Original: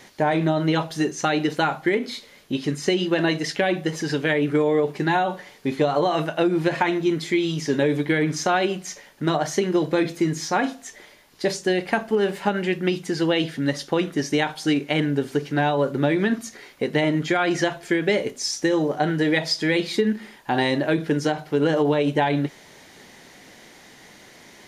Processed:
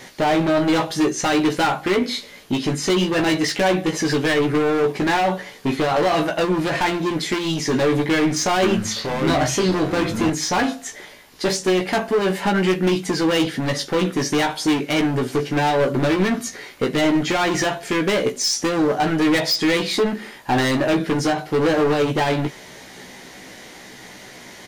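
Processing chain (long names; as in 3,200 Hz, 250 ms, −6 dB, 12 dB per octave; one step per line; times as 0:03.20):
gain into a clipping stage and back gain 23 dB
double-tracking delay 16 ms −5 dB
0:08.16–0:10.30: delay with pitch and tempo change per echo 463 ms, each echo −6 semitones, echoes 2, each echo −6 dB
level +6 dB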